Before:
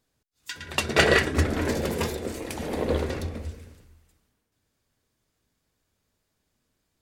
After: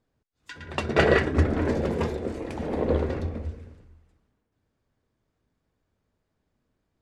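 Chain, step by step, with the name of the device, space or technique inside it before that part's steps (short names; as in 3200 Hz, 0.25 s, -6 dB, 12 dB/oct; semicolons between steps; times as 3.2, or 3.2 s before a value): through cloth (LPF 8600 Hz 12 dB/oct; high shelf 2500 Hz -15.5 dB); gain +2 dB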